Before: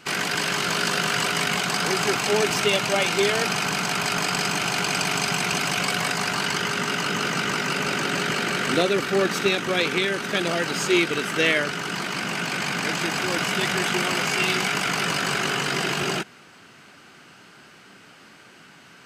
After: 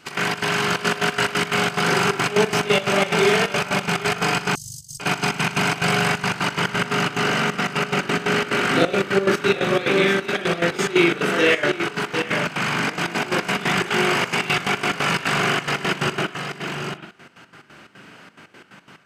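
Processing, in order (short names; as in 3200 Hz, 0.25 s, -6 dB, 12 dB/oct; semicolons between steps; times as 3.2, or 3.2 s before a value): echo 0.747 s -7 dB; reverb, pre-delay 41 ms, DRR -4.5 dB; step gate "x.xx.xxxx.x.x.x." 178 bpm -12 dB; 4.55–5 inverse Chebyshev band-stop 250–2600 Hz, stop band 50 dB; gain -2 dB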